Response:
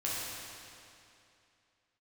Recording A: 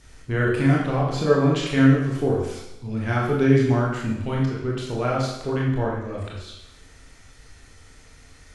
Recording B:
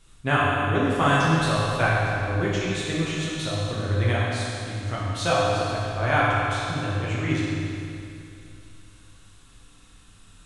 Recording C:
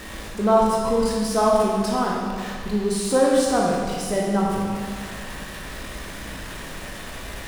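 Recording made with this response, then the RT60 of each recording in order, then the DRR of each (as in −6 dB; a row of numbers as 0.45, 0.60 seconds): B; 0.90, 2.6, 1.9 seconds; −4.0, −7.5, −4.0 decibels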